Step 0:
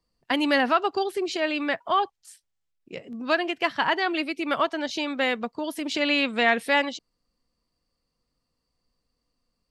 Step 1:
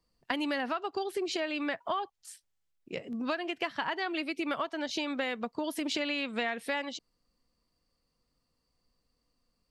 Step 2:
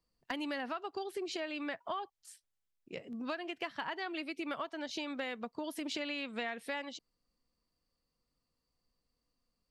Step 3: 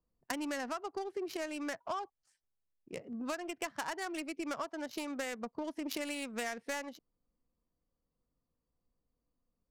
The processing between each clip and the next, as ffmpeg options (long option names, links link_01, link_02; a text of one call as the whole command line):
ffmpeg -i in.wav -af "acompressor=threshold=-29dB:ratio=10" out.wav
ffmpeg -i in.wav -af "asoftclip=type=hard:threshold=-20dB,volume=-6dB" out.wav
ffmpeg -i in.wav -af "adynamicsmooth=sensitivity=7.5:basefreq=1200,aexciter=amount=4.5:drive=3.7:freq=5000,volume=1dB" out.wav